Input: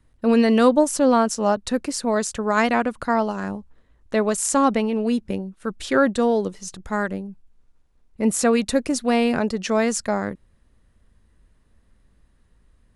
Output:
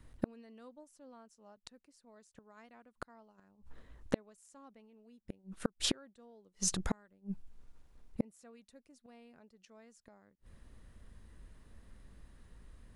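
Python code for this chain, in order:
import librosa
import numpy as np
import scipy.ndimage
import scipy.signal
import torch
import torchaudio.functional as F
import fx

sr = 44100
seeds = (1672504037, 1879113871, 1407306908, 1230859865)

y = fx.gate_flip(x, sr, shuts_db=-20.0, range_db=-41)
y = F.gain(torch.from_numpy(y), 2.5).numpy()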